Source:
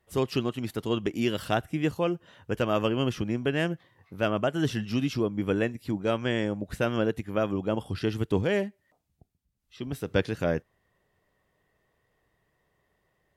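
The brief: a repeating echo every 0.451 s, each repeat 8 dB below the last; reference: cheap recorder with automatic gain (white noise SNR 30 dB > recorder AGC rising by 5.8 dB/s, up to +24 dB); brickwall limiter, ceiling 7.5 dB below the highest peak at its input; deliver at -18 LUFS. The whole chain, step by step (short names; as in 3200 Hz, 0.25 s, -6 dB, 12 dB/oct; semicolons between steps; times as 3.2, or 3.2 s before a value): limiter -18.5 dBFS; feedback echo 0.451 s, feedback 40%, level -8 dB; white noise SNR 30 dB; recorder AGC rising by 5.8 dB/s, up to +24 dB; gain +13 dB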